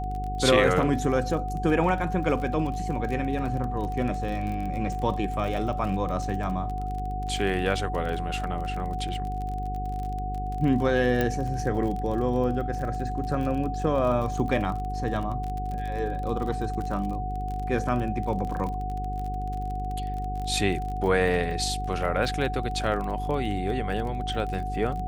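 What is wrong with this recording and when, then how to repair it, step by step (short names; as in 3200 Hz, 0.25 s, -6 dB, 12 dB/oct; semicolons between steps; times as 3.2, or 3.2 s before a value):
buzz 50 Hz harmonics 9 -32 dBFS
crackle 33/s -32 dBFS
tone 740 Hz -32 dBFS
11.21 pop -12 dBFS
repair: de-click; notch 740 Hz, Q 30; de-hum 50 Hz, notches 9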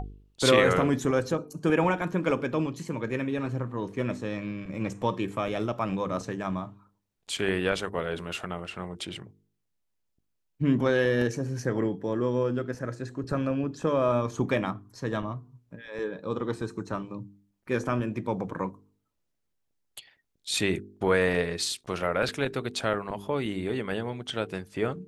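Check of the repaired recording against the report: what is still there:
11.21 pop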